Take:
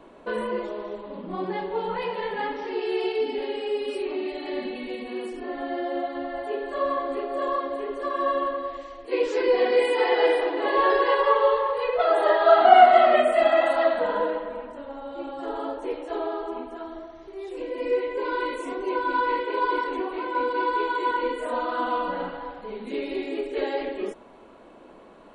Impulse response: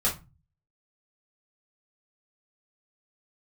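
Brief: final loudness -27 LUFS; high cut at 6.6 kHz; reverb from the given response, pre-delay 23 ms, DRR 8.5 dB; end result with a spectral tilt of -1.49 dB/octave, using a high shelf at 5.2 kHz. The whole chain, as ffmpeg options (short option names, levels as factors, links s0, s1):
-filter_complex "[0:a]lowpass=6600,highshelf=f=5200:g=-7.5,asplit=2[s0][s1];[1:a]atrim=start_sample=2205,adelay=23[s2];[s1][s2]afir=irnorm=-1:irlink=0,volume=0.126[s3];[s0][s3]amix=inputs=2:normalize=0,volume=0.668"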